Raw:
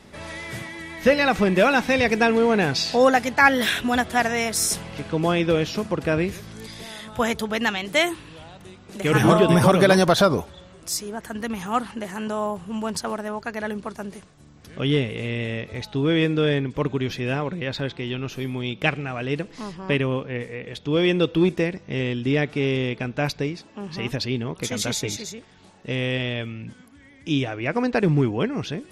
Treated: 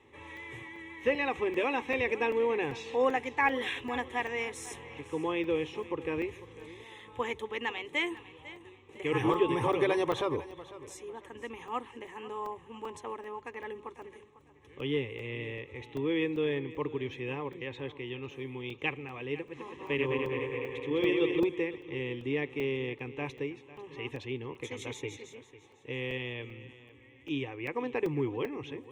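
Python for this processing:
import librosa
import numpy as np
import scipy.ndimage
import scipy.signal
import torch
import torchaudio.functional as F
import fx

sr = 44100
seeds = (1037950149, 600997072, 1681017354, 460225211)

y = fx.reverse_delay_fb(x, sr, ms=103, feedback_pct=78, wet_db=-3.5, at=(19.36, 21.4))
y = scipy.signal.sosfilt(scipy.signal.butter(2, 87.0, 'highpass', fs=sr, output='sos'), y)
y = fx.air_absorb(y, sr, metres=89.0)
y = fx.fixed_phaser(y, sr, hz=970.0, stages=8)
y = fx.echo_feedback(y, sr, ms=499, feedback_pct=32, wet_db=-17.0)
y = fx.buffer_crackle(y, sr, first_s=0.37, period_s=0.39, block=128, kind='zero')
y = F.gain(torch.from_numpy(y), -7.0).numpy()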